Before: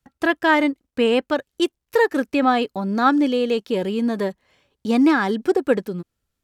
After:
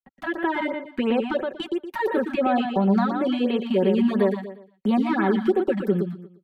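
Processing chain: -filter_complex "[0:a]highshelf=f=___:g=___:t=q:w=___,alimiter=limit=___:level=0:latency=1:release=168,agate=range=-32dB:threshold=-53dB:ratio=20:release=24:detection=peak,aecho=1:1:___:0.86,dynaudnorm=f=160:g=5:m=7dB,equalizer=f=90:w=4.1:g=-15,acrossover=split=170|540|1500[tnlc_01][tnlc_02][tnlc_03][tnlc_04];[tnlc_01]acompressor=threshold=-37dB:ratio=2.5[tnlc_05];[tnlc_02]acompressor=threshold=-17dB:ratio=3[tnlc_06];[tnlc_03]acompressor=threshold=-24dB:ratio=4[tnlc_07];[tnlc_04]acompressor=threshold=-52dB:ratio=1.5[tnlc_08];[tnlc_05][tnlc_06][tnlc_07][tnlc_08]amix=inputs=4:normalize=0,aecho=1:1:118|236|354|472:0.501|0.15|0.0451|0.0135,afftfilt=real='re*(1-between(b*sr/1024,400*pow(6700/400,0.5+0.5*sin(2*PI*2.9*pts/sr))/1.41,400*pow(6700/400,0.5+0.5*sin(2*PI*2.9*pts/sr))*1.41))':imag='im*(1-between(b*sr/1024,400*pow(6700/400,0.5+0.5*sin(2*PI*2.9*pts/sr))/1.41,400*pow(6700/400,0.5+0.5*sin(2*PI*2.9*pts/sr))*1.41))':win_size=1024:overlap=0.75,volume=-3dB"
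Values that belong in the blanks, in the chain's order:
4300, -7, 1.5, -15.5dB, 5.3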